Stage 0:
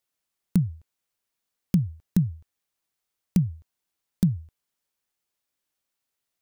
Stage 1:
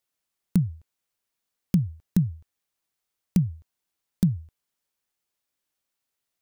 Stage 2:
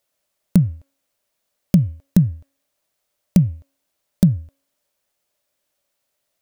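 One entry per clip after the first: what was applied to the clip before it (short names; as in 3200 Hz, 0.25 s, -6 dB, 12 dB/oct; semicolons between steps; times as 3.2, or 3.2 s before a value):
nothing audible
bell 590 Hz +13 dB 0.31 oct; de-hum 274.8 Hz, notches 11; gain +7.5 dB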